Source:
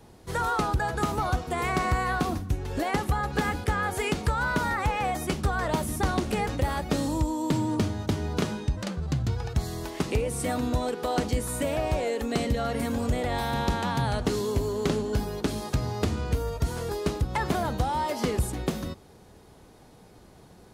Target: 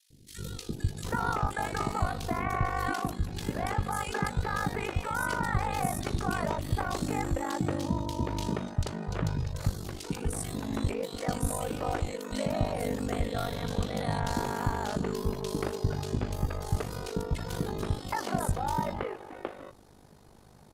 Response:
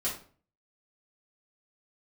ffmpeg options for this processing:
-filter_complex "[0:a]acrossover=split=360|2600[link_01][link_02][link_03];[link_01]adelay=100[link_04];[link_02]adelay=770[link_05];[link_04][link_05][link_03]amix=inputs=3:normalize=0,aeval=exprs='val(0)*sin(2*PI*25*n/s)':channel_layout=same"

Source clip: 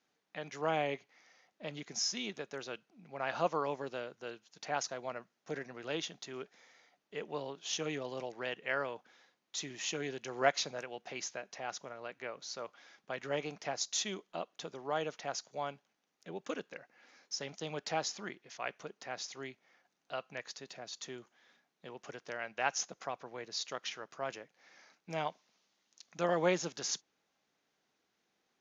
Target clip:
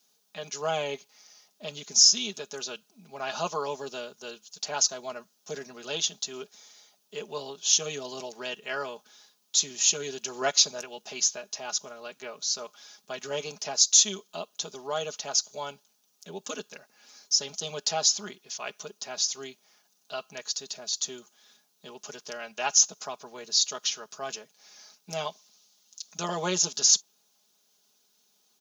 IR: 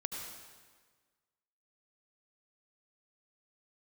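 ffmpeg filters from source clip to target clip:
-af "equalizer=frequency=2000:width_type=o:width=0.69:gain=-13,crystalizer=i=7:c=0,aecho=1:1:4.8:0.75"

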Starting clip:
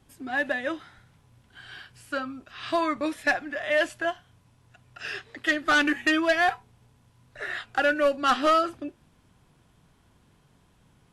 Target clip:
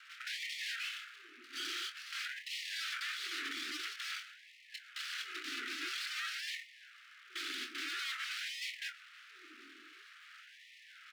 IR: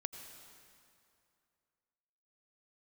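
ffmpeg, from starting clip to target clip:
-filter_complex "[0:a]aecho=1:1:2.3:0.99,alimiter=level_in=1dB:limit=-24dB:level=0:latency=1:release=25,volume=-1dB,acompressor=threshold=-33dB:ratio=6,aeval=exprs='0.0562*sin(PI/2*6.31*val(0)/0.0562)':channel_layout=same,highpass=frequency=150:width_type=q:width=0.5412,highpass=frequency=150:width_type=q:width=1.307,lowpass=frequency=2900:width_type=q:width=0.5176,lowpass=frequency=2900:width_type=q:width=0.7071,lowpass=frequency=2900:width_type=q:width=1.932,afreqshift=-52,aeval=exprs='abs(val(0))':channel_layout=same,asuperstop=centerf=690:order=12:qfactor=0.74,asplit=2[link_01][link_02];[link_02]adelay=326.5,volume=-21dB,highshelf=frequency=4000:gain=-7.35[link_03];[link_01][link_03]amix=inputs=2:normalize=0,asplit=2[link_04][link_05];[1:a]atrim=start_sample=2205,atrim=end_sample=3528,adelay=25[link_06];[link_05][link_06]afir=irnorm=-1:irlink=0,volume=-6dB[link_07];[link_04][link_07]amix=inputs=2:normalize=0,afftfilt=real='re*gte(b*sr/1024,230*pow(1800/230,0.5+0.5*sin(2*PI*0.49*pts/sr)))':imag='im*gte(b*sr/1024,230*pow(1800/230,0.5+0.5*sin(2*PI*0.49*pts/sr)))':win_size=1024:overlap=0.75,volume=-4dB"

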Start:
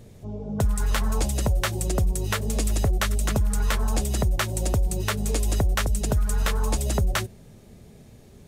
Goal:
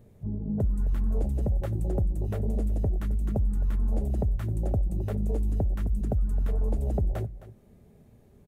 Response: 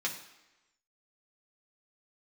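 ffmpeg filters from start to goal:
-filter_complex "[0:a]afwtdn=0.0631,equalizer=frequency=5300:width_type=o:width=2.3:gain=-11.5,asplit=2[link_01][link_02];[link_02]alimiter=limit=-24dB:level=0:latency=1:release=171,volume=2dB[link_03];[link_01][link_03]amix=inputs=2:normalize=0,acompressor=threshold=-42dB:ratio=1.5,aecho=1:1:263:0.168,asplit=2[link_04][link_05];[1:a]atrim=start_sample=2205,afade=type=out:start_time=0.15:duration=0.01,atrim=end_sample=7056,adelay=5[link_06];[link_05][link_06]afir=irnorm=-1:irlink=0,volume=-19.5dB[link_07];[link_04][link_07]amix=inputs=2:normalize=0,volume=2dB"

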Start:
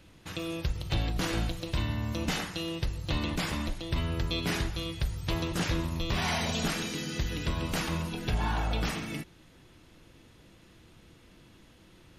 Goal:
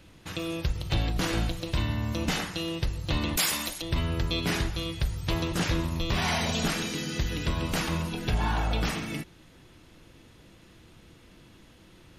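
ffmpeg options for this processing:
ffmpeg -i in.wav -filter_complex "[0:a]asettb=1/sr,asplit=3[link_01][link_02][link_03];[link_01]atrim=end=3.374[link_04];[link_02]atrim=start=3.37:end=3.82,asetpts=PTS-STARTPTS,afade=type=in:duration=0.004:curve=qsin,afade=type=out:start_time=0.446:duration=0.004:curve=qsin,aemphasis=mode=production:type=riaa[link_05];[link_03]atrim=start=3.816[link_06];[link_04][link_05]acrossfade=duration=0.004:curve1=hsin:curve2=qsin[link_07];[link_07][link_06]acrossfade=duration=0.004:curve1=qsin:curve2=hsin,volume=2.5dB" out.wav

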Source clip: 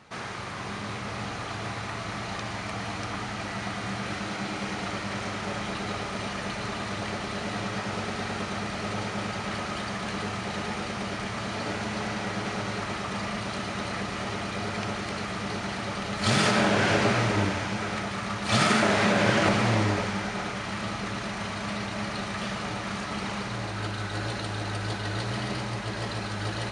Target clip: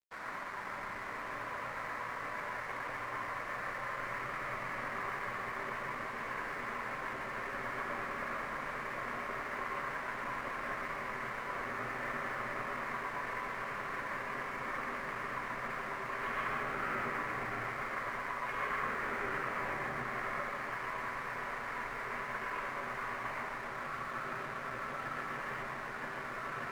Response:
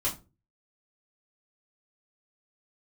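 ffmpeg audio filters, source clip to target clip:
-filter_complex "[0:a]highpass=frequency=300:width_type=q:width=0.5412,highpass=frequency=300:width_type=q:width=1.307,lowpass=frequency=2200:width_type=q:width=0.5176,lowpass=frequency=2200:width_type=q:width=0.7071,lowpass=frequency=2200:width_type=q:width=1.932,afreqshift=-180,alimiter=limit=-24dB:level=0:latency=1:release=147,tiltshelf=frequency=1100:gain=-8.5,asplit=2[link_01][link_02];[1:a]atrim=start_sample=2205,adelay=113[link_03];[link_02][link_03]afir=irnorm=-1:irlink=0,volume=-7dB[link_04];[link_01][link_04]amix=inputs=2:normalize=0,aeval=exprs='sgn(val(0))*max(abs(val(0))-0.00398,0)':channel_layout=same,volume=-5dB"

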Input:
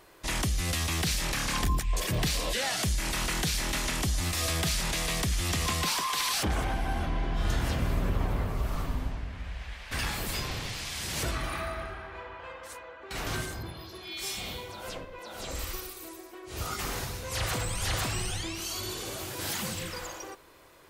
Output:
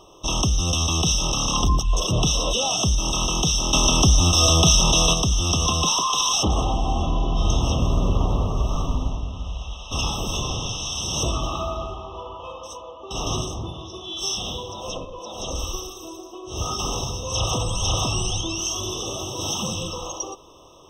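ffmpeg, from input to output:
ffmpeg -i in.wav -filter_complex "[0:a]highshelf=frequency=7900:width_type=q:width=3:gain=-11,asettb=1/sr,asplit=3[link_01][link_02][link_03];[link_01]atrim=end=3.734[link_04];[link_02]atrim=start=3.73:end=5.14,asetpts=PTS-STARTPTS,afade=type=in:duration=0.004:curve=qsin,afade=type=out:start_time=1.406:duration=0.004:curve=qsin,acontrast=29[link_05];[link_03]atrim=start=5.136[link_06];[link_04][link_05]acrossfade=duration=0.004:curve1=hsin:curve2=qsin[link_07];[link_07][link_06]acrossfade=duration=0.004:curve1=qsin:curve2=hsin,afftfilt=real='re*eq(mod(floor(b*sr/1024/1300),2),0)':imag='im*eq(mod(floor(b*sr/1024/1300),2),0)':win_size=1024:overlap=0.75,volume=8dB" out.wav

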